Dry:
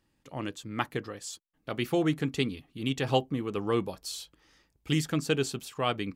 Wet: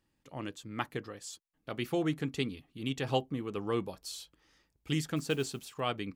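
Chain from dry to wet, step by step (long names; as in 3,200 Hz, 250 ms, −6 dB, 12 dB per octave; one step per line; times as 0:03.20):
0:05.16–0:05.80: noise that follows the level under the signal 27 dB
level −4.5 dB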